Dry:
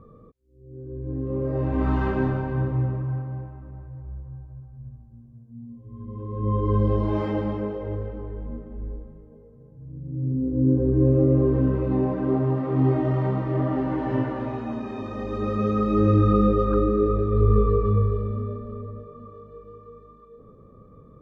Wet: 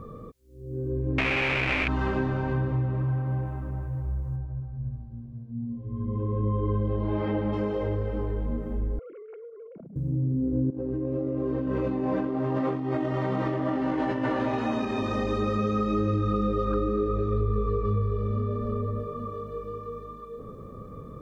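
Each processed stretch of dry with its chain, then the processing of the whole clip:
1.18–1.88 s: one-bit comparator + resonant low-pass 2.4 kHz, resonance Q 7
4.36–7.53 s: distance through air 330 m + band-stop 1.1 kHz, Q 13
8.99–9.96 s: formants replaced by sine waves + compression 12:1, threshold -50 dBFS + small resonant body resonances 640/1400/2200 Hz, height 12 dB, ringing for 30 ms
10.70–14.85 s: doubling 19 ms -13.5 dB + compressor with a negative ratio -27 dBFS + bass shelf 110 Hz -12 dB
whole clip: treble shelf 2.3 kHz +9 dB; compression 5:1, threshold -32 dBFS; trim +7.5 dB

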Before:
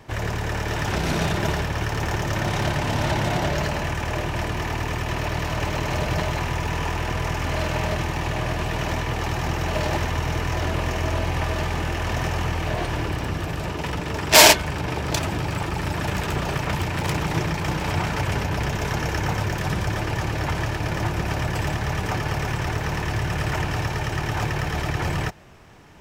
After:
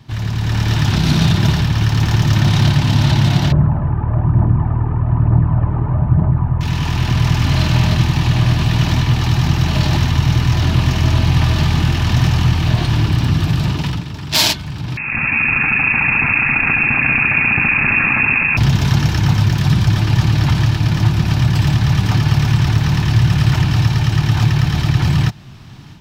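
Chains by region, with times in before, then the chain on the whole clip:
3.52–6.61 s: phaser 1.1 Hz, delay 2.6 ms, feedback 39% + low-pass 1.2 kHz 24 dB/octave
14.97–18.57 s: frequency inversion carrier 2.6 kHz + doubling 13 ms -13 dB + level flattener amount 70%
whole clip: graphic EQ 125/250/500/2000/4000/8000 Hz +11/+5/-12/-4/+9/-4 dB; level rider; trim -1 dB

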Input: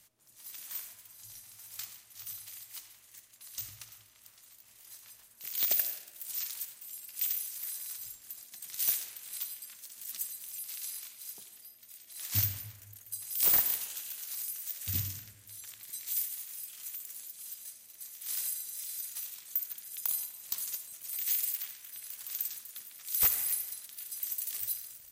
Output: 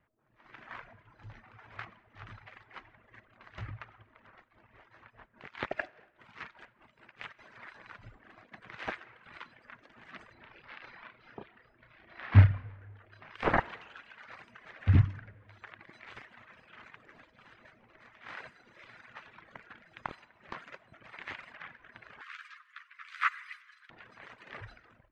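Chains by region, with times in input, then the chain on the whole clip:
4.39–7.39 s: upward compressor, threshold -52 dBFS + tremolo 4.9 Hz, depth 57%
10.33–13.35 s: Savitzky-Golay filter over 15 samples + doubling 32 ms -5 dB
22.21–23.90 s: steep high-pass 1.1 kHz 72 dB/octave + treble shelf 7.5 kHz +9 dB + doubling 13 ms -4.5 dB
whole clip: reverb removal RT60 1.1 s; low-pass 1.8 kHz 24 dB/octave; level rider gain up to 16.5 dB

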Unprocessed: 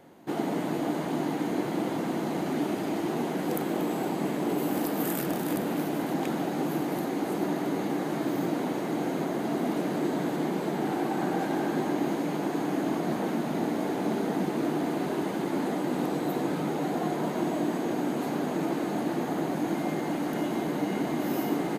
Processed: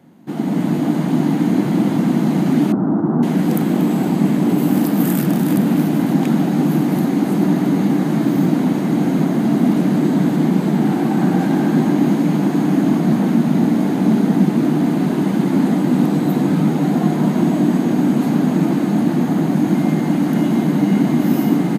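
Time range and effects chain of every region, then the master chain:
2.72–3.23 s: median filter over 25 samples + FFT filter 540 Hz 0 dB, 1.4 kHz +5 dB, 2.4 kHz -24 dB + decimation joined by straight lines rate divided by 2×
whole clip: high-pass 140 Hz; resonant low shelf 300 Hz +10.5 dB, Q 1.5; level rider gain up to 8 dB

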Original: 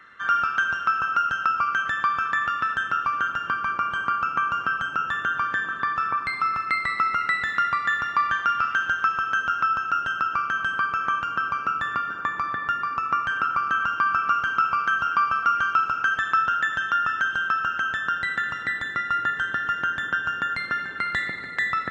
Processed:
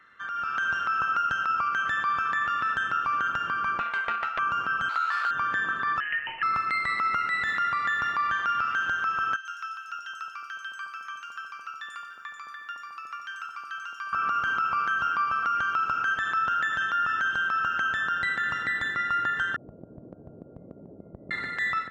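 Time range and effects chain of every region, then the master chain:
3.79–4.39 s: rippled Chebyshev high-pass 480 Hz, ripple 9 dB + loudspeaker Doppler distortion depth 0.39 ms
4.89–5.31 s: square wave that keeps the level + Butterworth band-pass 1.5 kHz, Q 0.83 + doubling 15 ms -3.5 dB
6.00–6.43 s: median filter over 25 samples + frequency inversion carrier 3 kHz
9.36–14.13 s: differentiator + three bands offset in time mids, highs, lows 90/510 ms, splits 870/5500 Hz
19.56–21.31 s: elliptic low-pass 650 Hz, stop band 60 dB + compression 2.5:1, threshold -42 dBFS
whole clip: compression 2.5:1, threshold -24 dBFS; peak limiter -20.5 dBFS; level rider gain up to 9 dB; trim -7 dB

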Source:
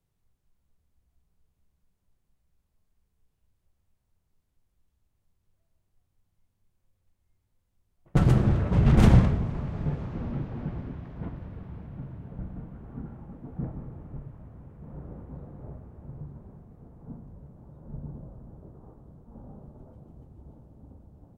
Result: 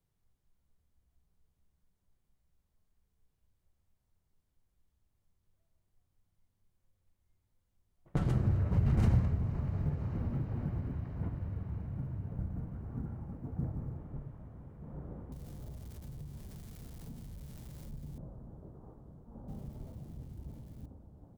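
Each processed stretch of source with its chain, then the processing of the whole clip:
8.34–13.97 s: band-stop 3.4 kHz, Q 6.3 + short-mantissa float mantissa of 6-bit + peaking EQ 90 Hz +9.5 dB 1 oct
15.32–18.18 s: zero-crossing glitches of -36.5 dBFS + bass shelf 130 Hz +9.5 dB + compression 3:1, threshold -40 dBFS
19.48–20.86 s: zero-crossing glitches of -47 dBFS + tone controls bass +7 dB, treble -3 dB + doubling 23 ms -13 dB
whole clip: band-stop 2.6 kHz, Q 23; compression 2:1, threshold -30 dBFS; trim -3 dB

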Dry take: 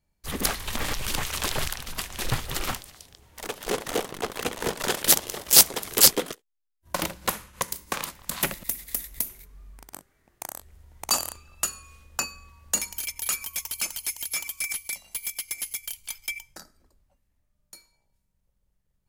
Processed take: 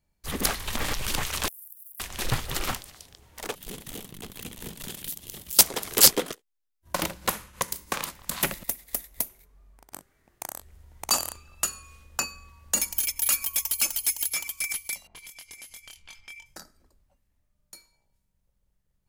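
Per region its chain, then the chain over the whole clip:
1.48–2.00 s: jump at every zero crossing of -31 dBFS + inverse Chebyshev high-pass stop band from 2.6 kHz, stop band 80 dB + compression 10:1, threshold -40 dBFS
3.55–5.59 s: FFT filter 190 Hz 0 dB, 510 Hz -16 dB, 1.4 kHz -16 dB, 3.3 kHz -5 dB, 5.3 kHz -9 dB, 14 kHz +1 dB + compression 4:1, threshold -33 dBFS
8.65–9.92 s: peaking EQ 660 Hz +7 dB 1.5 oct + upward expansion, over -42 dBFS
12.76–14.30 s: treble shelf 10 kHz +8 dB + comb 3.6 ms, depth 58%
15.07–16.46 s: level-controlled noise filter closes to 910 Hz, open at -27.5 dBFS + compression 5:1, threshold -43 dBFS + doubling 24 ms -3.5 dB
whole clip: none

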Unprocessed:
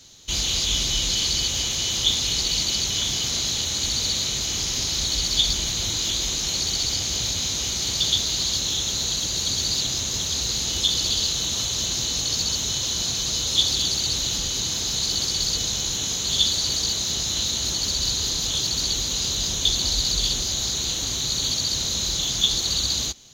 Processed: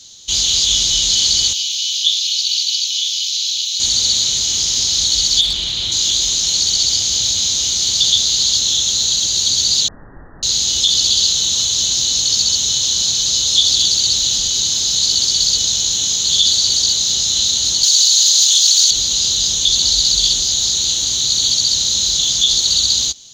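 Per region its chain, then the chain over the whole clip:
1.53–3.80 s: Chebyshev high-pass 2.5 kHz, order 4 + peaking EQ 7.9 kHz -10 dB 0.75 oct
5.41–5.92 s: resonant high shelf 4.5 kHz -10 dB, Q 1.5 + hard clipper -20 dBFS
9.88–10.43 s: Chebyshev low-pass 2 kHz, order 10 + frequency shift -100 Hz
17.83–18.91 s: high-pass 400 Hz + tilt EQ +3 dB/octave
whole clip: high-order bell 5 kHz +11.5 dB; loudness maximiser -1 dB; trim -1 dB

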